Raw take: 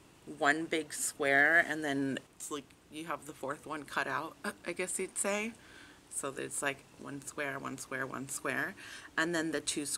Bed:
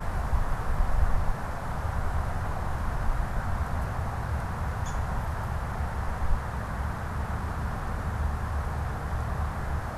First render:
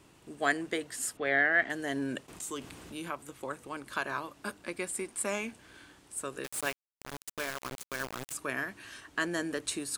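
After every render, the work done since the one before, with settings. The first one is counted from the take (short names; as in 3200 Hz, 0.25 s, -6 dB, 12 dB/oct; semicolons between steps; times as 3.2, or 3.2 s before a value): 1.17–1.7 Chebyshev low-pass 3100 Hz; 2.28–3.11 fast leveller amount 50%; 6.44–8.33 requantised 6-bit, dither none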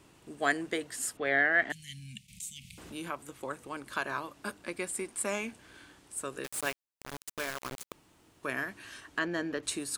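1.72–2.78 Chebyshev band-stop 210–2200 Hz, order 5; 7.92–8.43 room tone; 9.19–9.63 running mean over 5 samples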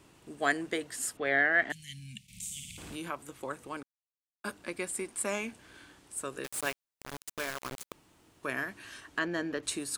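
2.23–2.96 flutter echo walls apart 9.5 m, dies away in 1.1 s; 3.83–4.44 mute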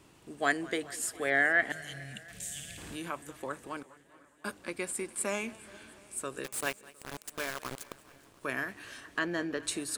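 swung echo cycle 0.709 s, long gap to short 1.5:1, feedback 46%, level -23 dB; warbling echo 0.202 s, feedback 53%, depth 125 cents, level -21 dB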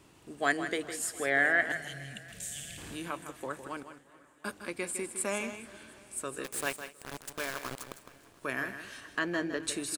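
echo 0.158 s -10 dB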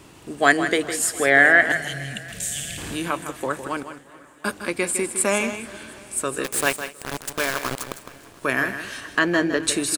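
gain +12 dB; limiter -2 dBFS, peak gain reduction 1 dB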